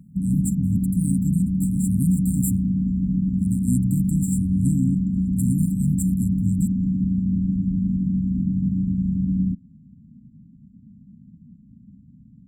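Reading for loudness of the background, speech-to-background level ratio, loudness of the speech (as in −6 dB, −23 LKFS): −23.0 LKFS, −4.5 dB, −27.5 LKFS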